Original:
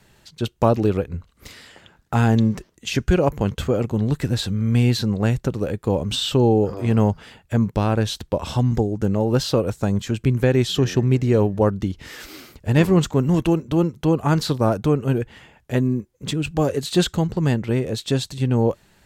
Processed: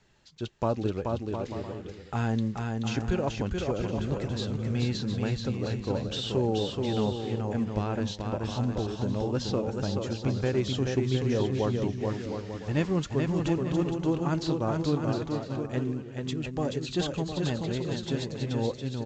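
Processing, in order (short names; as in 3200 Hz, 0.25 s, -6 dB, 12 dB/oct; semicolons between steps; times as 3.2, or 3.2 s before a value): flange 1.9 Hz, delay 2.2 ms, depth 1.9 ms, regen +76%; bouncing-ball echo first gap 0.43 s, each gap 0.65×, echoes 5; gain -6 dB; µ-law 128 kbps 16000 Hz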